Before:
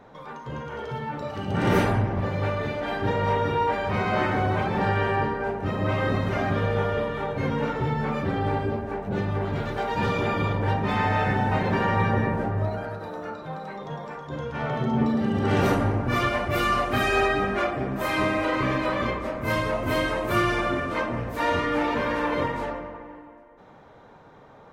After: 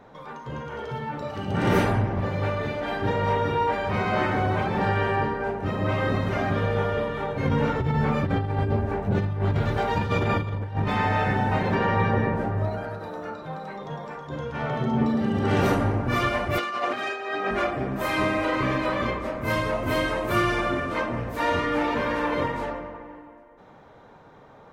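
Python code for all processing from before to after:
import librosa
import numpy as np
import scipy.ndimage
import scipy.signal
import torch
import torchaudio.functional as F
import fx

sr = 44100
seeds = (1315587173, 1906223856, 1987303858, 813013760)

y = fx.chain(x, sr, fx.peak_eq(hz=86.0, db=9.0, octaves=1.3),
    fx.over_compress(threshold_db=-23.0, ratio=-0.5), at=(7.45, 10.88))
y = fx.chain(y, sr, fx.lowpass(hz=6000.0, slope=12),
    fx.peak_eq(hz=460.0, db=3.0, octaves=0.31), at=(11.75, 12.36))
y = fx.chain(y, sr, fx.over_compress(threshold_db=-26.0, ratio=-0.5),
    fx.bandpass_edges(low_hz=340.0, high_hz=6200.0), at=(16.58, 17.51))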